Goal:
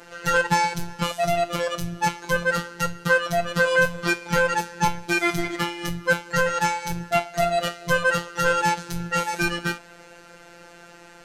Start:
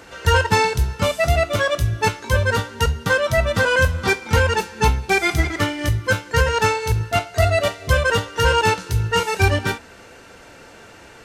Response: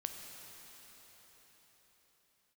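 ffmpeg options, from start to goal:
-af "afftfilt=real='hypot(re,im)*cos(PI*b)':imag='0':win_size=1024:overlap=0.75"

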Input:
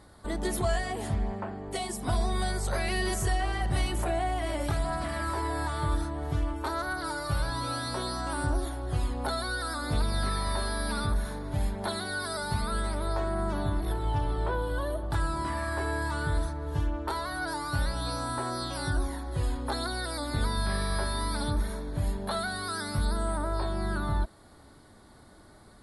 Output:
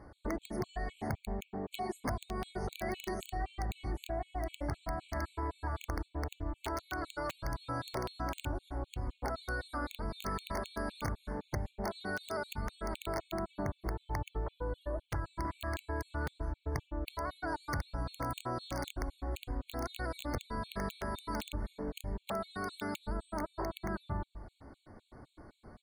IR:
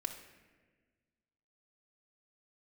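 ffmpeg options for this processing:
-filter_complex "[0:a]lowpass=f=4000:p=1,highshelf=f=2000:g=-10,bandreject=f=50:t=h:w=6,bandreject=f=100:t=h:w=6,bandreject=f=150:t=h:w=6,bandreject=f=200:t=h:w=6,bandreject=f=250:t=h:w=6,asplit=2[s0][s1];[s1]adelay=107,lowpass=f=1900:p=1,volume=0.178,asplit=2[s2][s3];[s3]adelay=107,lowpass=f=1900:p=1,volume=0.36,asplit=2[s4][s5];[s5]adelay=107,lowpass=f=1900:p=1,volume=0.36[s6];[s2][s4][s6]amix=inputs=3:normalize=0[s7];[s0][s7]amix=inputs=2:normalize=0,acompressor=threshold=0.02:ratio=12,aeval=exprs='(mod(26.6*val(0)+1,2)-1)/26.6':c=same,afftfilt=real='re*gt(sin(2*PI*3.9*pts/sr)*(1-2*mod(floor(b*sr/1024/2200),2)),0)':imag='im*gt(sin(2*PI*3.9*pts/sr)*(1-2*mod(floor(b*sr/1024/2200),2)),0)':win_size=1024:overlap=0.75,volume=1.41"

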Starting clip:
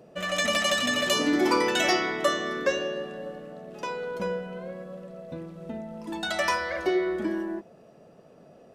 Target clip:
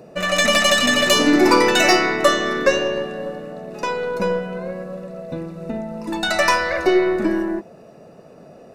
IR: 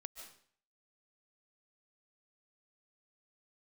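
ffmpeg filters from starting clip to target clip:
-af "aeval=exprs='0.266*(cos(1*acos(clip(val(0)/0.266,-1,1)))-cos(1*PI/2))+0.00944*(cos(8*acos(clip(val(0)/0.266,-1,1)))-cos(8*PI/2))':c=same,asuperstop=centerf=3200:order=20:qfactor=7.6,volume=2.82"

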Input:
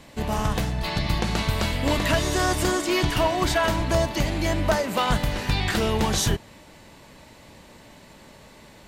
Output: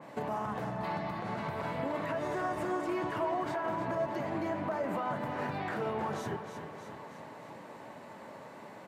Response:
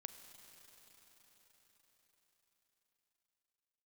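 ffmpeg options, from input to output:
-filter_complex "[0:a]acompressor=threshold=0.0398:ratio=6,highpass=f=110:w=0.5412,highpass=f=110:w=1.3066,equalizer=f=880:w=0.5:g=8,alimiter=limit=0.0891:level=0:latency=1:release=42,aecho=1:1:311|622|933|1244|1555:0.335|0.164|0.0804|0.0394|0.0193,asplit=2[s0][s1];[1:a]atrim=start_sample=2205,lowpass=2100,lowshelf=f=73:g=-11[s2];[s1][s2]afir=irnorm=-1:irlink=0,volume=2.66[s3];[s0][s3]amix=inputs=2:normalize=0,flanger=delay=5.8:depth=5.5:regen=-65:speed=0.53:shape=triangular,adynamicequalizer=threshold=0.00562:dfrequency=2800:dqfactor=0.7:tfrequency=2800:tqfactor=0.7:attack=5:release=100:ratio=0.375:range=3:mode=cutabove:tftype=highshelf,volume=0.447"

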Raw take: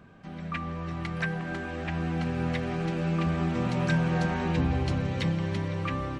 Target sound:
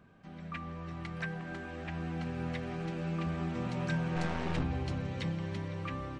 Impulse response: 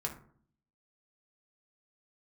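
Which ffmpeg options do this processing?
-filter_complex "[0:a]asplit=3[s0][s1][s2];[s0]afade=t=out:st=4.15:d=0.02[s3];[s1]aeval=exprs='0.178*(cos(1*acos(clip(val(0)/0.178,-1,1)))-cos(1*PI/2))+0.0282*(cos(8*acos(clip(val(0)/0.178,-1,1)))-cos(8*PI/2))':c=same,afade=t=in:st=4.15:d=0.02,afade=t=out:st=4.62:d=0.02[s4];[s2]afade=t=in:st=4.62:d=0.02[s5];[s3][s4][s5]amix=inputs=3:normalize=0,aresample=22050,aresample=44100,volume=0.422"

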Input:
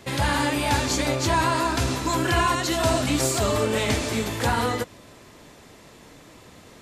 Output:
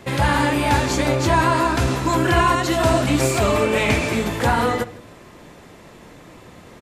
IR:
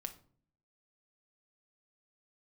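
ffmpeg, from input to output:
-filter_complex "[0:a]asettb=1/sr,asplit=3[s0][s1][s2];[s0]atrim=end=3.214[s3];[s1]atrim=start=3.21:end=4.15,asetpts=PTS-STARTPTS,afade=t=in:d=0.004:c=qsin,afade=t=out:st=0.936:d=0.004:c=qsin,equalizer=f=2400:w=5.9:g=9.5[s4];[s2]atrim=start=4.146[s5];[s3][s4]acrossfade=d=0.004:c1=hsin:c2=qsin[s6];[s6][s5]acrossfade=d=0.004:c1=qsin:c2=hsin,asplit=2[s7][s8];[s8]adelay=157.4,volume=0.0794,highshelf=f=4000:g=-3.54[s9];[s7][s9]amix=inputs=2:normalize=0,asplit=2[s10][s11];[1:a]atrim=start_sample=2205,lowpass=3100[s12];[s11][s12]afir=irnorm=-1:irlink=0,volume=1.19[s13];[s10][s13]amix=inputs=2:normalize=0"

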